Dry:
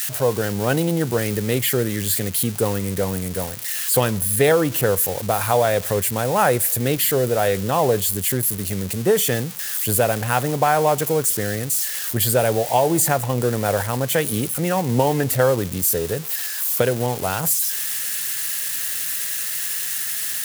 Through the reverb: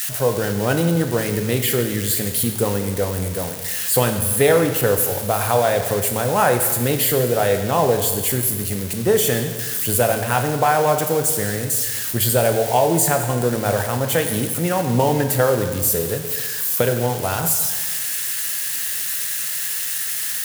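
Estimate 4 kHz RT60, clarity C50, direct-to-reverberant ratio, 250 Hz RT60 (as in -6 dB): 1.3 s, 7.5 dB, 5.5 dB, 1.5 s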